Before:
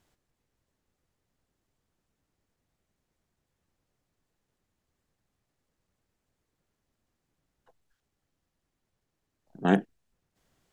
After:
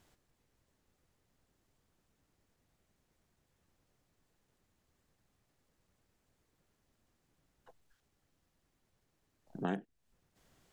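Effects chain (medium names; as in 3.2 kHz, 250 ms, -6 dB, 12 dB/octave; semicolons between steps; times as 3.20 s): compression 4:1, threshold -39 dBFS, peak gain reduction 19 dB; trim +3 dB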